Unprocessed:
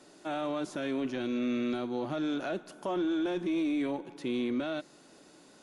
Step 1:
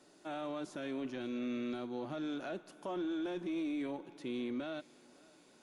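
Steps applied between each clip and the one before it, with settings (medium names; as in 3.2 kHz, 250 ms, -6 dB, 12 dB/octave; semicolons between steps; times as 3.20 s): thinning echo 558 ms, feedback 70%, level -23 dB; trim -7 dB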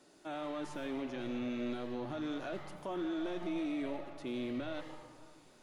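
on a send at -5 dB: full-wave rectifier + reverberation RT60 1.6 s, pre-delay 79 ms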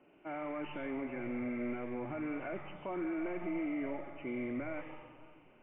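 knee-point frequency compression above 2 kHz 4:1; level-controlled noise filter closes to 1.3 kHz, open at -36 dBFS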